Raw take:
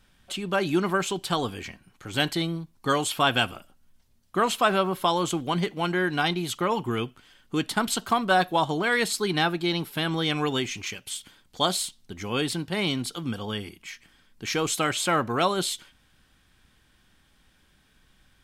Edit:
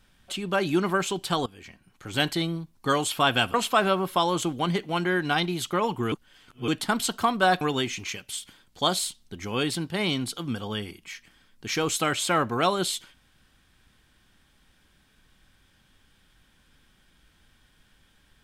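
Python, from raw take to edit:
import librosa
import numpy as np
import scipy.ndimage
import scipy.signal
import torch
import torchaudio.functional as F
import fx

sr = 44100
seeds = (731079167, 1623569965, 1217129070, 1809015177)

y = fx.edit(x, sr, fx.fade_in_from(start_s=1.46, length_s=0.62, floor_db=-18.5),
    fx.cut(start_s=3.54, length_s=0.88),
    fx.reverse_span(start_s=7.0, length_s=0.56),
    fx.cut(start_s=8.49, length_s=1.9), tone=tone)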